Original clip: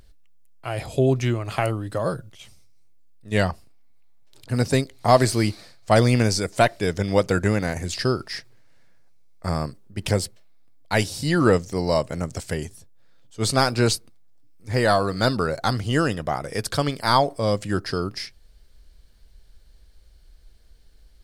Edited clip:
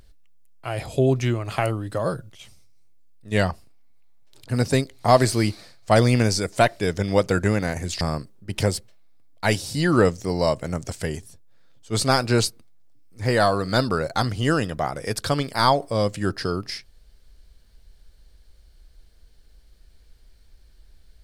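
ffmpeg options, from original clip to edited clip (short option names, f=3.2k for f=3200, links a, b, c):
-filter_complex "[0:a]asplit=2[a][b];[a]atrim=end=8.012[c];[b]atrim=start=9.488[d];[c][d]acrossfade=d=0.004:c1=hsin:c2=hsin"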